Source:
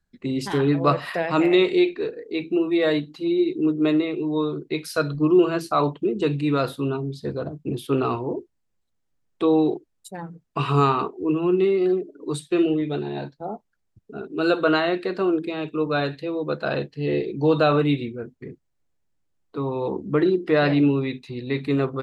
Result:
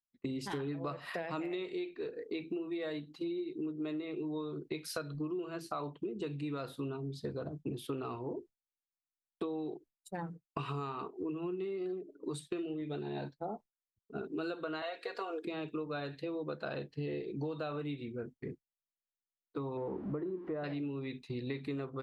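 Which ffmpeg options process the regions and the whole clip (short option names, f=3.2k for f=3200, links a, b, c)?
-filter_complex "[0:a]asettb=1/sr,asplit=3[a][b][c];[a]atrim=end=14.824[d];[b]atrim=start=14.82:end=15.45,asetpts=PTS-STARTPTS,afade=t=in:d=0.004:c=qsin,afade=t=out:st=0.626:d=0.004:c=qsin,highpass=f=410:w=0.5412,highpass=f=410:w=1.3066,highshelf=f=6.1k:g=5,aecho=1:1:4.2:0.81,atrim=end_sample=27783[e];[c]atrim=start=15.446[f];[d][e]acrossfade=d=0.004:c1=hsin:c2=qsin[g];[g][f]acrossfade=d=0.004:c1=qsin:c2=hsin,asettb=1/sr,asplit=3[h][i][j];[h]atrim=end=19.774[k];[i]atrim=start=19.77:end=20.64,asetpts=PTS-STARTPTS,afade=t=in:d=0.004:c=qsin,afade=t=out:st=0.866:d=0.004:c=qsin,aeval=exprs='val(0)+0.5*0.0237*sgn(val(0))':c=same,lowpass=1.1k[l];[j]atrim=start=20.636[m];[k][l]acrossfade=d=0.004:c1=hsin:c2=qsin[n];[n][m]acrossfade=d=0.004:c1=qsin:c2=hsin,agate=range=-33dB:threshold=-35dB:ratio=3:detection=peak,acompressor=threshold=-32dB:ratio=16,volume=-3dB"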